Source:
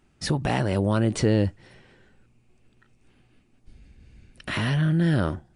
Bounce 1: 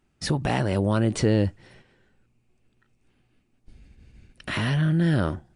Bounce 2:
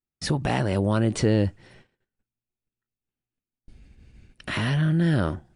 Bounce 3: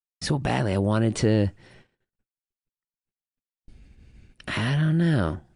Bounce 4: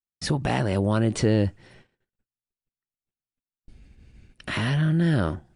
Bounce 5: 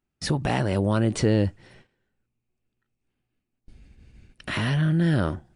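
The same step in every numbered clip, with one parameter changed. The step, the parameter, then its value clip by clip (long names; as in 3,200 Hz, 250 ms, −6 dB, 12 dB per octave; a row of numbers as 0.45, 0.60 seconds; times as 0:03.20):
noise gate, range: −6, −32, −57, −45, −19 decibels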